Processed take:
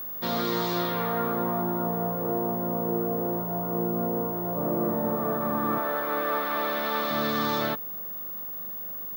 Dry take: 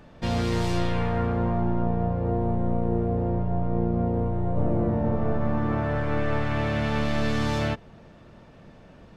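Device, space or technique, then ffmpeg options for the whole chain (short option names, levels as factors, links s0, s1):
old television with a line whistle: -filter_complex "[0:a]highpass=f=180:w=0.5412,highpass=f=180:w=1.3066,equalizer=f=240:t=q:w=4:g=-3,equalizer=f=1200:t=q:w=4:g=8,equalizer=f=2600:t=q:w=4:g=-8,equalizer=f=3800:t=q:w=4:g=7,lowpass=f=6800:w=0.5412,lowpass=f=6800:w=1.3066,aeval=exprs='val(0)+0.0224*sin(2*PI*15625*n/s)':c=same,asettb=1/sr,asplit=3[s0][s1][s2];[s0]atrim=end=5.784[s3];[s1]atrim=start=5.78:end=7.11,asetpts=PTS-STARTPTS,afade=t=in:d=0.004:c=qsin,afade=t=out:st=1.326:d=0.004:c=qsin,highpass=320[s4];[s2]atrim=start=7.106[s5];[s3][s4]acrossfade=d=0.004:c1=hsin:c2=qsin[s6];[s6][s5]acrossfade=d=0.004:c1=qsin:c2=hsin"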